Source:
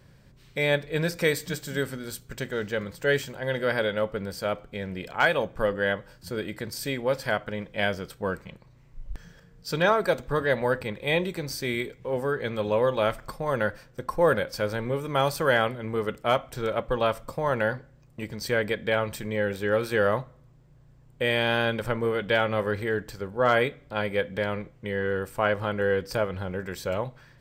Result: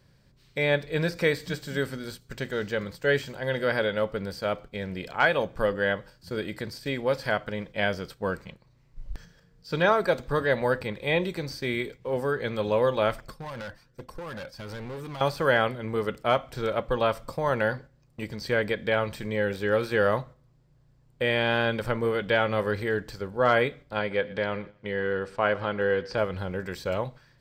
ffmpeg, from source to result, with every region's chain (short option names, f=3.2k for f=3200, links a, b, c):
-filter_complex "[0:a]asettb=1/sr,asplit=3[a][b][c];[a]atrim=end=13.214[d];[b]atrim=start=13.21:end=15.21,asetpts=PTS-STARTPTS,afade=t=in:d=0.004:c=qsin,afade=t=out:st=1.996:d=0.004:c=qsin,acompressor=threshold=-25dB:ratio=5:attack=3.2:release=140:knee=1:detection=peak,flanger=delay=0.3:depth=1.1:regen=-30:speed=1.2:shape=triangular,asoftclip=type=hard:threshold=-34dB[e];[c]atrim=start=15.206[f];[d][e]acrossfade=d=0.004:c1=hsin:c2=qsin[g];[g][f]acrossfade=d=0.004:c1=qsin:c2=hsin,asettb=1/sr,asplit=3[h][i][j];[h]atrim=end=23.994[k];[i]atrim=start=23.99:end=26.18,asetpts=PTS-STARTPTS,afade=t=in:d=0.004:c=qsin,afade=t=out:st=2.186:d=0.004:c=qsin,lowpass=4.7k,lowshelf=f=110:g=-8,aecho=1:1:118|236|354:0.0891|0.0357|0.0143,atrim=end_sample=96579[l];[j]atrim=start=26.176[m];[k][l]acrossfade=d=0.004:c1=hsin:c2=qsin[n];[n][m]acrossfade=d=0.004:c1=qsin:c2=hsin,acrossover=split=3300[o][p];[p]acompressor=threshold=-45dB:ratio=4:attack=1:release=60[q];[o][q]amix=inputs=2:normalize=0,agate=range=-6dB:threshold=-42dB:ratio=16:detection=peak,equalizer=f=4.6k:t=o:w=0.63:g=5.5"